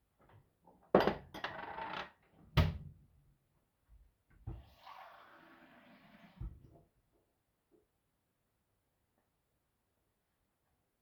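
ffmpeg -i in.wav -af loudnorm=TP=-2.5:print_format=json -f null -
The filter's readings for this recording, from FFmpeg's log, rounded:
"input_i" : "-36.8",
"input_tp" : "-12.4",
"input_lra" : "20.1",
"input_thresh" : "-51.5",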